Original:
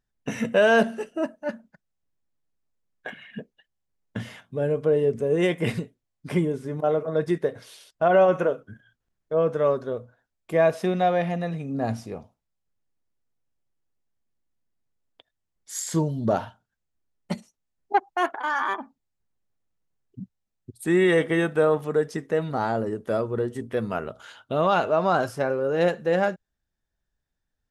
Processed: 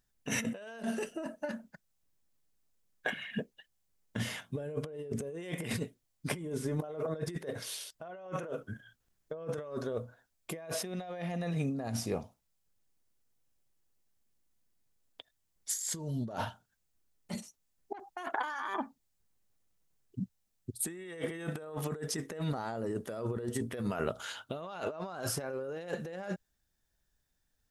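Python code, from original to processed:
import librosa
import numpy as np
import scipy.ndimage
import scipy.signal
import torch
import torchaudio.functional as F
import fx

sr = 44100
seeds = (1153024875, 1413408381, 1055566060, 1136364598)

y = fx.high_shelf(x, sr, hz=4200.0, db=9.5)
y = fx.over_compress(y, sr, threshold_db=-32.0, ratio=-1.0)
y = F.gain(torch.from_numpy(y), -6.0).numpy()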